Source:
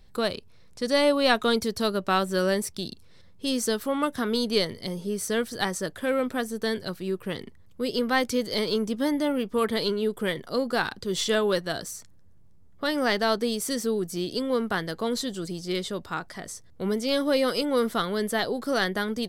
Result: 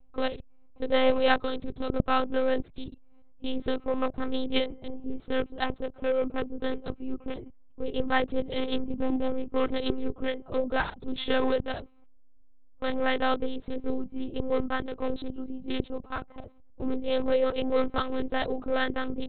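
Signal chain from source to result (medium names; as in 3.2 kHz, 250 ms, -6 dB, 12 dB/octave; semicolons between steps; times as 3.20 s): local Wiener filter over 25 samples; 1.39–1.91 s: compression 4:1, threshold -27 dBFS, peak gain reduction 7 dB; monotone LPC vocoder at 8 kHz 260 Hz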